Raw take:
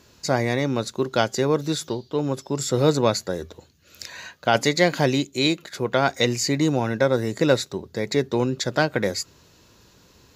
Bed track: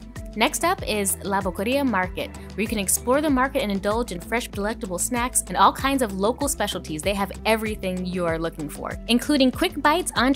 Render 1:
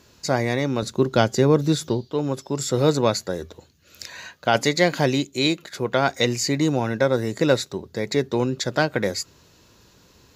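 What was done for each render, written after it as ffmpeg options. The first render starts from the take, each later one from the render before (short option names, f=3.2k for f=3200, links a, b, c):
-filter_complex "[0:a]asettb=1/sr,asplit=3[a][b][c];[a]atrim=end=0.824[d];[b]atrim=start=0.82:end=2.05,asetpts=PTS-STARTPTS,afade=t=in:d=0.004:c=qsin,afade=t=out:st=1.226:d=0.004:c=qsin,lowshelf=f=350:g=8.5[e];[c]atrim=start=2.046[f];[d][e]acrossfade=d=0.004:c1=hsin:c2=qsin[g];[g][f]acrossfade=d=0.004:c1=qsin:c2=hsin"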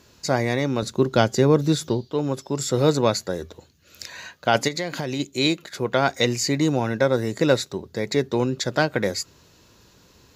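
-filter_complex "[0:a]asplit=3[a][b][c];[a]afade=t=out:st=4.67:d=0.02[d];[b]acompressor=threshold=-23dB:ratio=6:attack=3.2:release=140:knee=1:detection=peak,afade=t=in:st=4.67:d=0.02,afade=t=out:st=5.19:d=0.02[e];[c]afade=t=in:st=5.19:d=0.02[f];[d][e][f]amix=inputs=3:normalize=0"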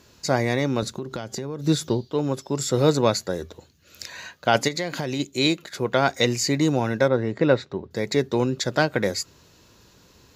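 -filter_complex "[0:a]asettb=1/sr,asplit=3[a][b][c];[a]atrim=end=0.904[d];[b]atrim=start=0.9:end=1.67,asetpts=PTS-STARTPTS,afade=t=in:d=0.004:c=qsin,afade=t=out:st=0.766:d=0.004:c=qsin,acompressor=threshold=-27dB:ratio=8:attack=3.2:release=140:knee=1:detection=peak[e];[c]atrim=start=1.666[f];[d][e]acrossfade=d=0.004:c1=hsin:c2=qsin[g];[g][f]acrossfade=d=0.004:c1=qsin:c2=hsin,asettb=1/sr,asplit=3[h][i][j];[h]atrim=end=7.084[k];[i]atrim=start=7.08:end=7.91,asetpts=PTS-STARTPTS,afade=t=in:d=0.004:c=qsin,afade=t=out:st=0.826:d=0.004:c=qsin,lowpass=2.5k[l];[j]atrim=start=7.906[m];[k][l]acrossfade=d=0.004:c1=hsin:c2=qsin[n];[n][m]acrossfade=d=0.004:c1=qsin:c2=hsin"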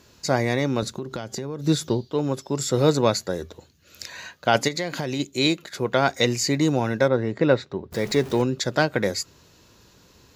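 -filter_complex "[0:a]asettb=1/sr,asplit=3[a][b][c];[a]atrim=end=7.924[d];[b]atrim=start=7.92:end=8.42,asetpts=PTS-STARTPTS,afade=t=in:d=0.004:c=qsin,afade=t=out:st=0.496:d=0.004:c=qsin,aeval=exprs='val(0)+0.5*0.0211*sgn(val(0))':c=same[e];[c]atrim=start=8.416[f];[d][e]acrossfade=d=0.004:c1=hsin:c2=qsin[g];[g][f]acrossfade=d=0.004:c1=qsin:c2=hsin"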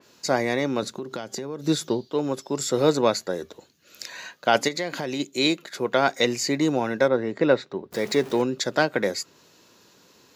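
-af "highpass=210,adynamicequalizer=threshold=0.0141:dfrequency=3600:dqfactor=0.7:tfrequency=3600:tqfactor=0.7:attack=5:release=100:ratio=0.375:range=2:mode=cutabove:tftype=highshelf"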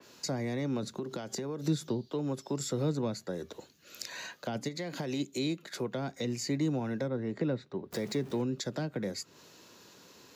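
-filter_complex "[0:a]acrossover=split=220[a][b];[b]acompressor=threshold=-35dB:ratio=6[c];[a][c]amix=inputs=2:normalize=0,acrossover=split=250|790|3400[d][e][f][g];[f]alimiter=level_in=13.5dB:limit=-24dB:level=0:latency=1,volume=-13.5dB[h];[d][e][h][g]amix=inputs=4:normalize=0"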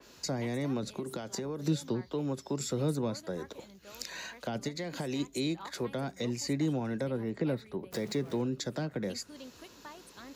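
-filter_complex "[1:a]volume=-30dB[a];[0:a][a]amix=inputs=2:normalize=0"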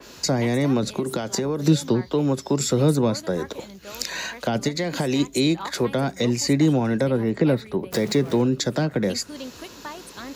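-af "volume=12dB"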